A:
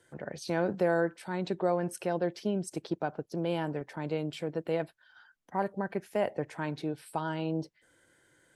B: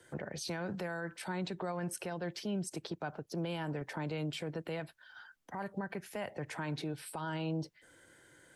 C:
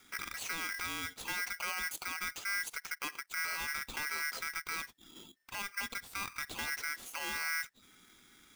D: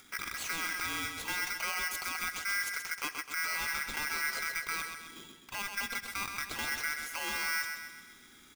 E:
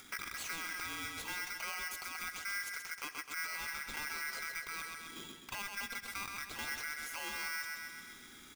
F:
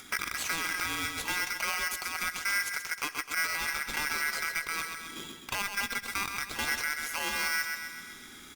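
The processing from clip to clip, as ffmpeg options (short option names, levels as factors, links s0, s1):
-filter_complex "[0:a]acrossover=split=190|930|4000[s0][s1][s2][s3];[s1]acompressor=threshold=0.0112:ratio=6[s4];[s0][s4][s2][s3]amix=inputs=4:normalize=0,alimiter=level_in=3.16:limit=0.0631:level=0:latency=1:release=124,volume=0.316,volume=1.68"
-af "aeval=exprs='val(0)*sgn(sin(2*PI*1800*n/s))':c=same"
-filter_complex "[0:a]acompressor=mode=upward:threshold=0.00141:ratio=2.5,asplit=2[s0][s1];[s1]aecho=0:1:129|258|387|516|645|774:0.473|0.241|0.123|0.0628|0.032|0.0163[s2];[s0][s2]amix=inputs=2:normalize=0,volume=1.26"
-af "alimiter=level_in=3.35:limit=0.0631:level=0:latency=1:release=477,volume=0.299,volume=1.33"
-filter_complex "[0:a]asplit=2[s0][s1];[s1]acrusher=bits=5:mix=0:aa=0.5,volume=0.531[s2];[s0][s2]amix=inputs=2:normalize=0,volume=2" -ar 48000 -c:a libopus -b:a 64k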